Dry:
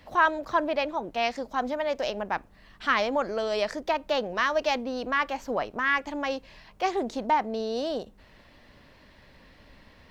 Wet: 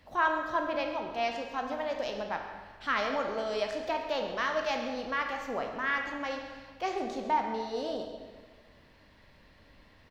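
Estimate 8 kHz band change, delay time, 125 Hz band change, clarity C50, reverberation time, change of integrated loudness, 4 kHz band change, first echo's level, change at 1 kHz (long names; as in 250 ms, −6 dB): can't be measured, 137 ms, −4.0 dB, 4.5 dB, 1.5 s, −4.5 dB, −5.0 dB, −14.5 dB, −4.0 dB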